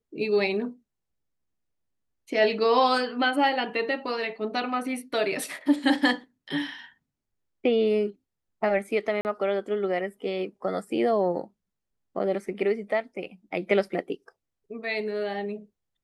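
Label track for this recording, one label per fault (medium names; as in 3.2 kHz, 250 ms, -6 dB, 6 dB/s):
9.210000	9.250000	dropout 39 ms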